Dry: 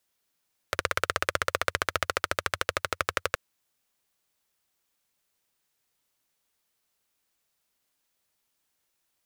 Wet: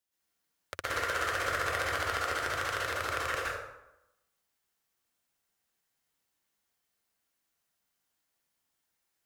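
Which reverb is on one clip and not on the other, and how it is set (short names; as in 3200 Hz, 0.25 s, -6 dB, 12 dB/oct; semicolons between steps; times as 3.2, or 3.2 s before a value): plate-style reverb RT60 0.91 s, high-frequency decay 0.6×, pre-delay 0.105 s, DRR -8 dB; gain -11 dB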